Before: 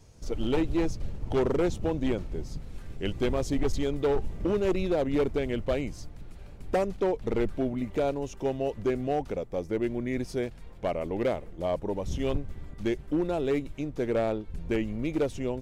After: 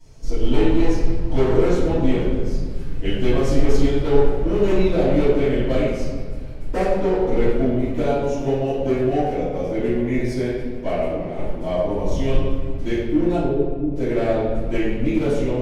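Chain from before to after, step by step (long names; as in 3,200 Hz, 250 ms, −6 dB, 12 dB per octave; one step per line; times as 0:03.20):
0:11.09–0:11.52: compressor whose output falls as the input rises −37 dBFS, ratio −1
0:13.36–0:13.91: Gaussian smoothing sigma 14 samples
convolution reverb RT60 1.6 s, pre-delay 3 ms, DRR −13.5 dB
level −8 dB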